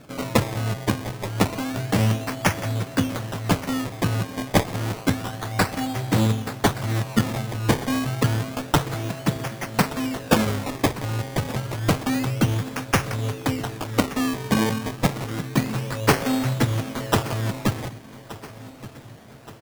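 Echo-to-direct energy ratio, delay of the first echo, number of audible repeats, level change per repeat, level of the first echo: -16.0 dB, 1.174 s, 4, -5.5 dB, -17.5 dB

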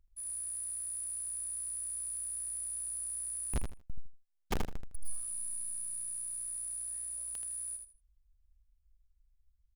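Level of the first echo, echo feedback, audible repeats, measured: -6.0 dB, 22%, 3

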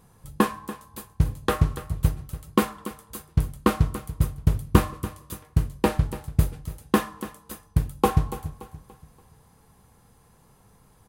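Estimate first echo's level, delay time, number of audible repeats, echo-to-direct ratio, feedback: -14.5 dB, 0.287 s, 3, -14.0 dB, 39%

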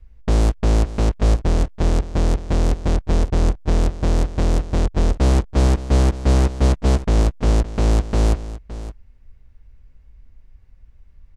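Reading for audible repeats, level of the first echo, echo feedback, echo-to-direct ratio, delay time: 1, -15.0 dB, no steady repeat, -15.0 dB, 0.566 s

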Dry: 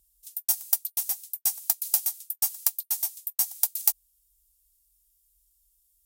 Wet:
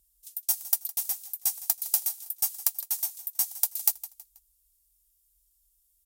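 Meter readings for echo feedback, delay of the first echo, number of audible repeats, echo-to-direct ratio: 36%, 0.161 s, 3, -16.0 dB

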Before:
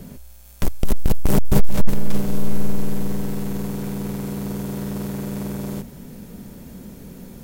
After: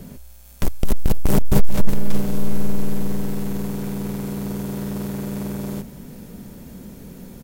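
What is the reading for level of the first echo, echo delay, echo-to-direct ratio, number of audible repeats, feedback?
-22.0 dB, 0.495 s, -22.0 dB, 1, no steady repeat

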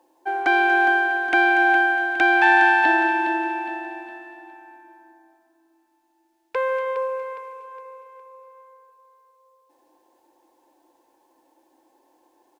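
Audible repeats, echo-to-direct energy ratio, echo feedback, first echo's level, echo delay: 4, -8.0 dB, 40%, -9.0 dB, 0.412 s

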